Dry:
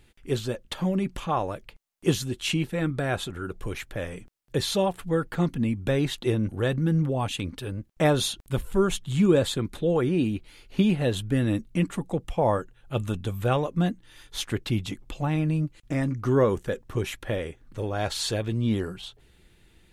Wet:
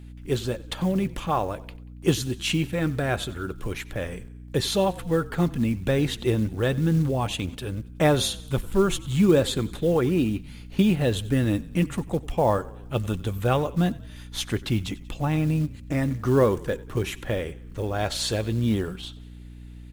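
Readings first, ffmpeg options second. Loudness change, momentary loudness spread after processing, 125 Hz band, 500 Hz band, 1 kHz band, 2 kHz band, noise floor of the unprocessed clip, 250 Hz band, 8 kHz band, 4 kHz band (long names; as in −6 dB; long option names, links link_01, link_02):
+1.5 dB, 12 LU, +1.5 dB, +1.5 dB, +1.5 dB, +1.5 dB, −59 dBFS, +1.5 dB, +2.0 dB, +1.5 dB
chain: -filter_complex "[0:a]asplit=5[link_01][link_02][link_03][link_04][link_05];[link_02]adelay=93,afreqshift=-34,volume=-20dB[link_06];[link_03]adelay=186,afreqshift=-68,volume=-25.8dB[link_07];[link_04]adelay=279,afreqshift=-102,volume=-31.7dB[link_08];[link_05]adelay=372,afreqshift=-136,volume=-37.5dB[link_09];[link_01][link_06][link_07][link_08][link_09]amix=inputs=5:normalize=0,acrusher=bits=7:mode=log:mix=0:aa=0.000001,aeval=exprs='val(0)+0.00794*(sin(2*PI*60*n/s)+sin(2*PI*2*60*n/s)/2+sin(2*PI*3*60*n/s)/3+sin(2*PI*4*60*n/s)/4+sin(2*PI*5*60*n/s)/5)':channel_layout=same,volume=1.5dB"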